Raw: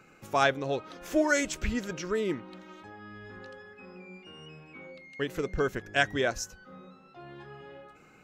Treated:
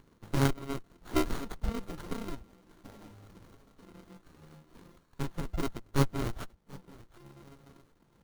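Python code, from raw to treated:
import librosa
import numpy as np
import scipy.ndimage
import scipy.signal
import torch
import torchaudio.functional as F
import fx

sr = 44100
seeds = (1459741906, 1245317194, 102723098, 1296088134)

p1 = fx.bit_reversed(x, sr, seeds[0], block=64)
p2 = p1 + fx.echo_feedback(p1, sr, ms=735, feedback_pct=15, wet_db=-19.5, dry=0)
p3 = fx.dereverb_blind(p2, sr, rt60_s=1.4)
y = fx.running_max(p3, sr, window=17)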